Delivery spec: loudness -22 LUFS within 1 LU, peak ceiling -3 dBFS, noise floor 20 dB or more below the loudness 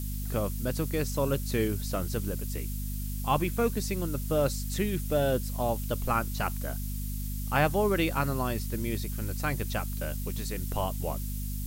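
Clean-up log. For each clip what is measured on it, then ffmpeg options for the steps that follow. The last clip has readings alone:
hum 50 Hz; highest harmonic 250 Hz; hum level -31 dBFS; noise floor -34 dBFS; noise floor target -51 dBFS; loudness -30.5 LUFS; peak level -11.0 dBFS; loudness target -22.0 LUFS
-> -af "bandreject=f=50:t=h:w=6,bandreject=f=100:t=h:w=6,bandreject=f=150:t=h:w=6,bandreject=f=200:t=h:w=6,bandreject=f=250:t=h:w=6"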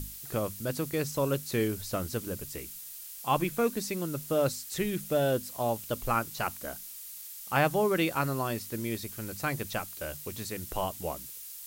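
hum not found; noise floor -44 dBFS; noise floor target -52 dBFS
-> -af "afftdn=nr=8:nf=-44"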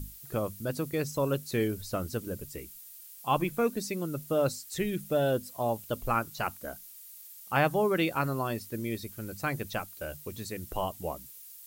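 noise floor -49 dBFS; noise floor target -52 dBFS
-> -af "afftdn=nr=6:nf=-49"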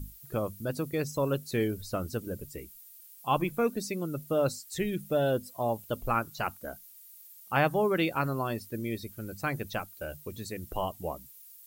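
noise floor -53 dBFS; loudness -32.0 LUFS; peak level -11.0 dBFS; loudness target -22.0 LUFS
-> -af "volume=3.16,alimiter=limit=0.708:level=0:latency=1"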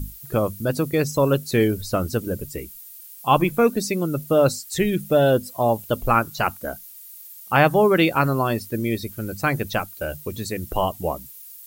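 loudness -22.0 LUFS; peak level -3.0 dBFS; noise floor -43 dBFS

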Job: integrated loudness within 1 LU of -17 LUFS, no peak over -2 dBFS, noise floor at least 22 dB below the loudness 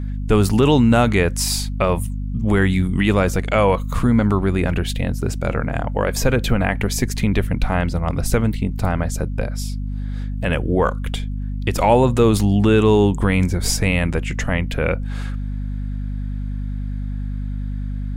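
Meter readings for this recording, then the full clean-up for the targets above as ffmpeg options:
hum 50 Hz; highest harmonic 250 Hz; hum level -22 dBFS; loudness -20.0 LUFS; peak level -1.5 dBFS; loudness target -17.0 LUFS
-> -af "bandreject=f=50:t=h:w=4,bandreject=f=100:t=h:w=4,bandreject=f=150:t=h:w=4,bandreject=f=200:t=h:w=4,bandreject=f=250:t=h:w=4"
-af "volume=1.41,alimiter=limit=0.794:level=0:latency=1"

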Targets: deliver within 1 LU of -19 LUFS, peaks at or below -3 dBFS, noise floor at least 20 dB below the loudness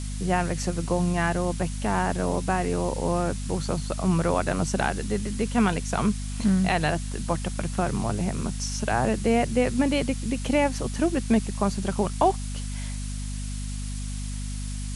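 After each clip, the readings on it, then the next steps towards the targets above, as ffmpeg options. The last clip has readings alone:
hum 50 Hz; highest harmonic 250 Hz; hum level -29 dBFS; noise floor -31 dBFS; noise floor target -47 dBFS; loudness -26.5 LUFS; peak level -8.0 dBFS; loudness target -19.0 LUFS
-> -af "bandreject=f=50:t=h:w=6,bandreject=f=100:t=h:w=6,bandreject=f=150:t=h:w=6,bandreject=f=200:t=h:w=6,bandreject=f=250:t=h:w=6"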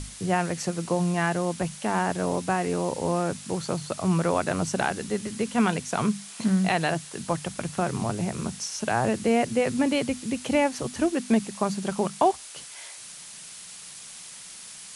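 hum not found; noise floor -43 dBFS; noise floor target -47 dBFS
-> -af "afftdn=nr=6:nf=-43"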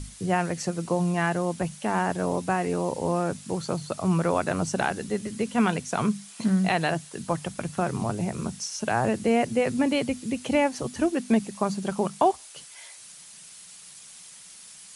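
noise floor -47 dBFS; loudness -26.5 LUFS; peak level -9.0 dBFS; loudness target -19.0 LUFS
-> -af "volume=2.37,alimiter=limit=0.708:level=0:latency=1"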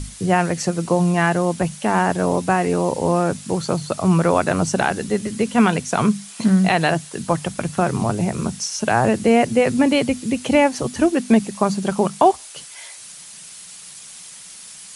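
loudness -19.5 LUFS; peak level -3.0 dBFS; noise floor -40 dBFS

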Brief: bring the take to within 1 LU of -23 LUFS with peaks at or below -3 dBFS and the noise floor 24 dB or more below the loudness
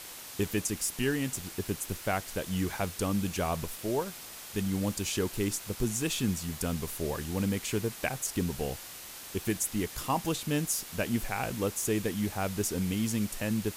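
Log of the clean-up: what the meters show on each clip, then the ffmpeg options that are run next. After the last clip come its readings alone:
noise floor -45 dBFS; noise floor target -56 dBFS; loudness -32.0 LUFS; peak level -16.0 dBFS; loudness target -23.0 LUFS
-> -af "afftdn=nr=11:nf=-45"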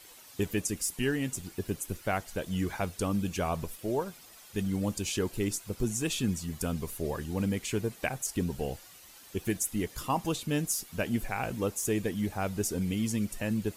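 noise floor -53 dBFS; noise floor target -57 dBFS
-> -af "afftdn=nr=6:nf=-53"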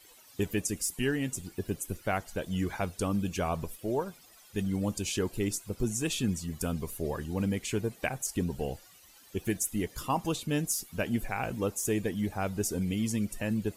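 noise floor -57 dBFS; loudness -32.5 LUFS; peak level -17.0 dBFS; loudness target -23.0 LUFS
-> -af "volume=2.99"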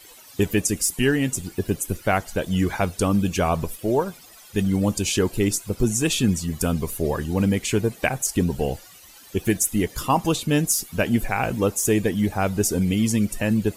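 loudness -23.0 LUFS; peak level -7.5 dBFS; noise floor -47 dBFS

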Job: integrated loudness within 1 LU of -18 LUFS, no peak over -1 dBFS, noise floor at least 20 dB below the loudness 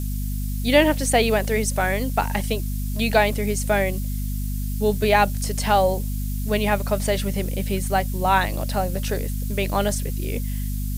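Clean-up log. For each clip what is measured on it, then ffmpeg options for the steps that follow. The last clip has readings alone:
hum 50 Hz; highest harmonic 250 Hz; hum level -23 dBFS; noise floor -26 dBFS; noise floor target -43 dBFS; loudness -22.5 LUFS; peak level -3.5 dBFS; loudness target -18.0 LUFS
-> -af "bandreject=f=50:t=h:w=4,bandreject=f=100:t=h:w=4,bandreject=f=150:t=h:w=4,bandreject=f=200:t=h:w=4,bandreject=f=250:t=h:w=4"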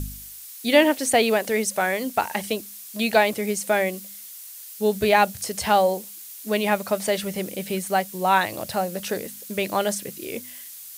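hum not found; noise floor -41 dBFS; noise floor target -43 dBFS
-> -af "afftdn=nr=6:nf=-41"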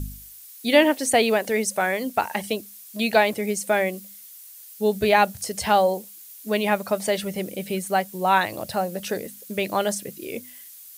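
noise floor -45 dBFS; loudness -23.0 LUFS; peak level -3.5 dBFS; loudness target -18.0 LUFS
-> -af "volume=1.78,alimiter=limit=0.891:level=0:latency=1"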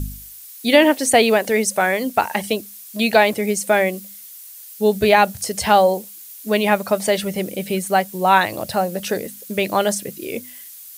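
loudness -18.5 LUFS; peak level -1.0 dBFS; noise floor -40 dBFS

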